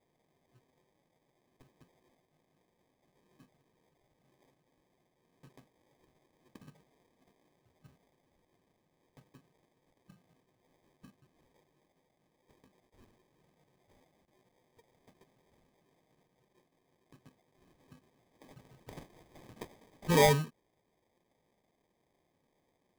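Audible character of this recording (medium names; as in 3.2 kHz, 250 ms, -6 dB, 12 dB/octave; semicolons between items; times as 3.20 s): aliases and images of a low sample rate 1.4 kHz, jitter 0%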